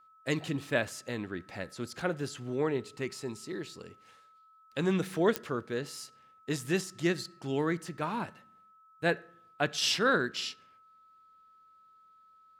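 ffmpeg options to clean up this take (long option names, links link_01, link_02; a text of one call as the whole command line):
ffmpeg -i in.wav -af "adeclick=threshold=4,bandreject=frequency=1300:width=30" out.wav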